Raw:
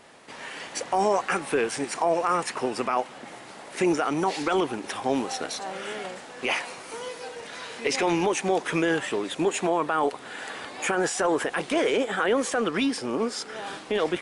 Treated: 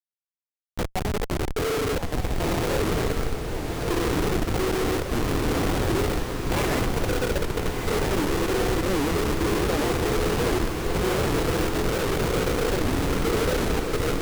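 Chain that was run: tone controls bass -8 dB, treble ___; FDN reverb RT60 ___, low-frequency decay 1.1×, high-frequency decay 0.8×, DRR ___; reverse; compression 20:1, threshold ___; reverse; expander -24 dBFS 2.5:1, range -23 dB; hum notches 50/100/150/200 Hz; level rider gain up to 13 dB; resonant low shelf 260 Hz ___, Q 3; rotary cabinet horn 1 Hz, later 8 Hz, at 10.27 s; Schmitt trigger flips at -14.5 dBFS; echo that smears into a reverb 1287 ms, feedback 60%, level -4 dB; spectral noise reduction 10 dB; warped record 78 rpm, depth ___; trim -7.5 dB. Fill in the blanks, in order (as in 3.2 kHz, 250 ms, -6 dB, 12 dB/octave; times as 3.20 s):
0 dB, 1.8 s, -6.5 dB, -24 dBFS, -11 dB, 250 cents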